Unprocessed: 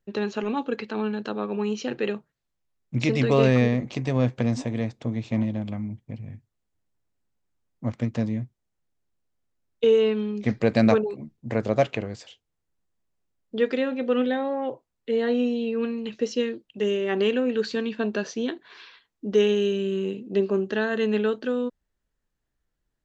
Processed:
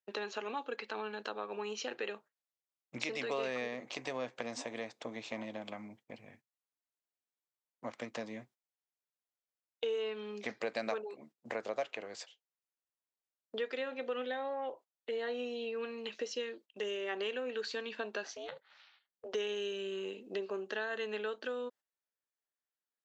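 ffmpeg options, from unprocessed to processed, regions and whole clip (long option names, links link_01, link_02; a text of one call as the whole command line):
ffmpeg -i in.wav -filter_complex "[0:a]asettb=1/sr,asplit=3[link_01][link_02][link_03];[link_01]atrim=end=18.254[link_04];[link_02]atrim=start=18.25:end=19.34,asetpts=PTS-STARTPTS,afade=type=in:duration=0.004:curve=qsin,afade=type=out:start_time=1.086:duration=0.004:curve=qsin,acompressor=threshold=-31dB:ratio=5:attack=3.2:release=140:knee=1:detection=peak,aeval=exprs='val(0)*sin(2*PI*190*n/s)':channel_layout=same[link_05];[link_03]atrim=start=19.336[link_06];[link_04][link_05]acrossfade=duration=0.004:curve1=hsin:curve2=qsin[link_07];[link_07][link_06]acrossfade=duration=0.004:curve1=qsin:curve2=hsin,agate=range=-13dB:threshold=-43dB:ratio=16:detection=peak,highpass=570,acompressor=threshold=-40dB:ratio=2.5,volume=1dB" out.wav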